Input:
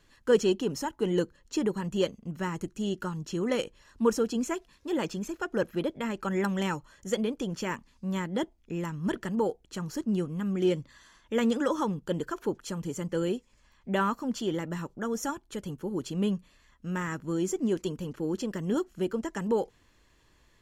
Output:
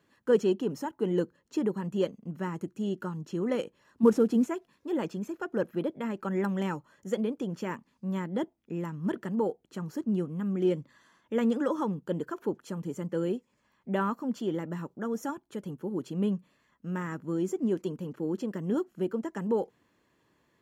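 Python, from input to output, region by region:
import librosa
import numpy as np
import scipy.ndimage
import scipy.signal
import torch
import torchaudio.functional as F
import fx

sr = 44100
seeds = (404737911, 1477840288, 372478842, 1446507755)

y = fx.chain(x, sr, fx.cvsd(bps=64000),
    fx.highpass(hz=50.0, slope=12),
    fx.low_shelf(hz=450.0, db=7.5), at=(4.03, 4.46))
y = scipy.signal.sosfilt(scipy.signal.cheby1(2, 1.0, 170.0, 'highpass', fs=sr, output='sos'), y)
y = fx.peak_eq(y, sr, hz=5800.0, db=-9.5, octaves=2.8)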